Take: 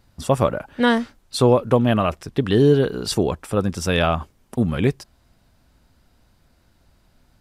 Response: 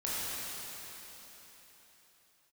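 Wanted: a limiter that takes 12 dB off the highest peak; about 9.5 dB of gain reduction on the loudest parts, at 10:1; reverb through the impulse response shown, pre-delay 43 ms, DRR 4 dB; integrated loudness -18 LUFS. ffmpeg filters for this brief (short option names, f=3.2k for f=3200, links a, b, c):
-filter_complex "[0:a]acompressor=threshold=-20dB:ratio=10,alimiter=limit=-22dB:level=0:latency=1,asplit=2[a][b];[1:a]atrim=start_sample=2205,adelay=43[c];[b][c]afir=irnorm=-1:irlink=0,volume=-11dB[d];[a][d]amix=inputs=2:normalize=0,volume=13dB"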